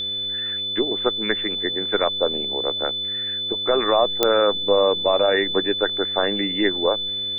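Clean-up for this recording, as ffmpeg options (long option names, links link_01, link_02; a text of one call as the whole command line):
ffmpeg -i in.wav -af "adeclick=threshold=4,bandreject=frequency=102:width_type=h:width=4,bandreject=frequency=204:width_type=h:width=4,bandreject=frequency=306:width_type=h:width=4,bandreject=frequency=408:width_type=h:width=4,bandreject=frequency=510:width_type=h:width=4,bandreject=frequency=3500:width=30" out.wav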